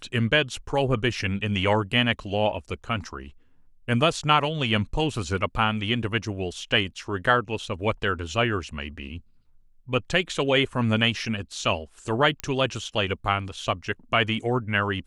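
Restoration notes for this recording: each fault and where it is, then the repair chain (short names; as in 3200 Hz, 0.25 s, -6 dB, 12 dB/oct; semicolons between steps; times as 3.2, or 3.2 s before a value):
12.4 pop -14 dBFS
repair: de-click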